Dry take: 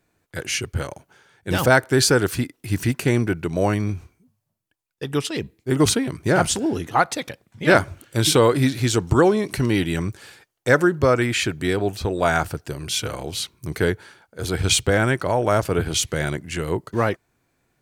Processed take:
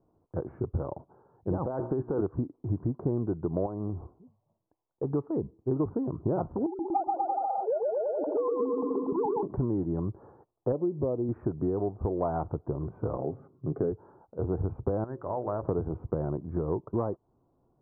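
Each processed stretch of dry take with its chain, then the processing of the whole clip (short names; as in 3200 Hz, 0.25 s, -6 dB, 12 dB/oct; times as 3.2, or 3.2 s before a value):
1.66–2.21 low shelf 160 Hz -6 dB + notches 60/120/180/240/300/360 Hz + negative-ratio compressor -25 dBFS
3.66–5.04 bell 690 Hz +8 dB 2.2 oct + compressor 2:1, threshold -33 dBFS
6.66–9.43 sine-wave speech + ladder low-pass 930 Hz, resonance 75% + bouncing-ball echo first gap 0.13 s, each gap 0.85×, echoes 8, each echo -2 dB
10.72–11.29 low shelf 95 Hz -10.5 dB + upward compressor, threshold -19 dBFS + Gaussian blur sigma 11 samples
13.17–13.92 HPF 130 Hz + bell 980 Hz -14 dB 0.29 oct + comb 7.4 ms, depth 38%
15.04–15.64 ladder low-pass 1900 Hz, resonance 75% + notches 60/120/180/240/300/360/420/480/540 Hz
whole clip: steep low-pass 1100 Hz 48 dB/oct; bell 360 Hz +2.5 dB; compressor, threshold -26 dBFS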